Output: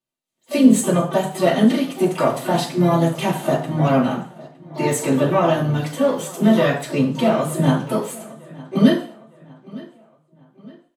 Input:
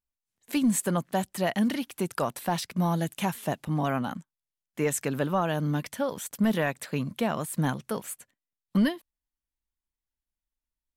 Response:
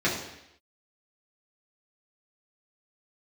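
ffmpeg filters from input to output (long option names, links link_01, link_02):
-filter_complex "[0:a]asplit=3[link_01][link_02][link_03];[link_02]asetrate=35002,aresample=44100,atempo=1.25992,volume=-13dB[link_04];[link_03]asetrate=88200,aresample=44100,atempo=0.5,volume=-12dB[link_05];[link_01][link_04][link_05]amix=inputs=3:normalize=0,asplit=2[link_06][link_07];[link_07]adelay=911,lowpass=frequency=4400:poles=1,volume=-20.5dB,asplit=2[link_08][link_09];[link_09]adelay=911,lowpass=frequency=4400:poles=1,volume=0.44,asplit=2[link_10][link_11];[link_11]adelay=911,lowpass=frequency=4400:poles=1,volume=0.44[link_12];[link_06][link_08][link_10][link_12]amix=inputs=4:normalize=0[link_13];[1:a]atrim=start_sample=2205,asetrate=79380,aresample=44100[link_14];[link_13][link_14]afir=irnorm=-1:irlink=0,volume=-1dB"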